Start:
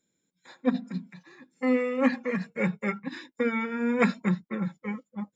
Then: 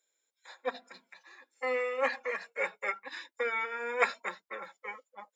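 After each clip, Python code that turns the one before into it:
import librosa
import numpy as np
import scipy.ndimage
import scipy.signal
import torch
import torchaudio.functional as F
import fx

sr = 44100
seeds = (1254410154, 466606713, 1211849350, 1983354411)

y = scipy.signal.sosfilt(scipy.signal.butter(4, 530.0, 'highpass', fs=sr, output='sos'), x)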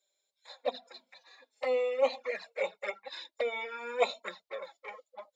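y = fx.env_flanger(x, sr, rest_ms=5.2, full_db=-28.5)
y = fx.graphic_eq_15(y, sr, hz=(630, 1600, 4000), db=(11, -4, 10))
y = F.gain(torch.from_numpy(y), -1.0).numpy()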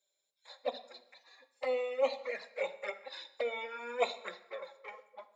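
y = fx.rev_plate(x, sr, seeds[0], rt60_s=0.9, hf_ratio=0.8, predelay_ms=0, drr_db=11.5)
y = F.gain(torch.from_numpy(y), -3.0).numpy()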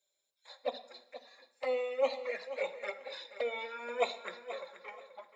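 y = fx.echo_feedback(x, sr, ms=480, feedback_pct=24, wet_db=-13.0)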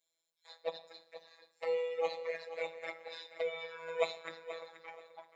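y = fx.robotise(x, sr, hz=164.0)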